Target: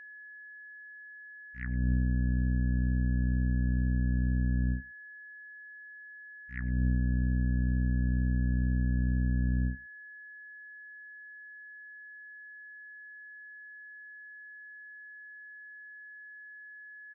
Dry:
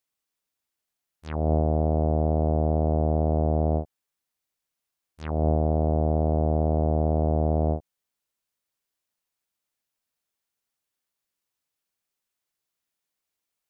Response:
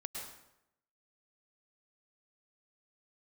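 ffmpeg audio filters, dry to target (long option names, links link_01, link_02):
-filter_complex "[0:a]asetrate=35236,aresample=44100,firequalizer=gain_entry='entry(260,0);entry(380,-27);entry(950,-25);entry(1800,15);entry(3400,-23)':delay=0.05:min_phase=1,aeval=exprs='val(0)+0.00794*sin(2*PI*1700*n/s)':channel_layout=same[link_01];[1:a]atrim=start_sample=2205,atrim=end_sample=4410,asetrate=40572,aresample=44100[link_02];[link_01][link_02]afir=irnorm=-1:irlink=0"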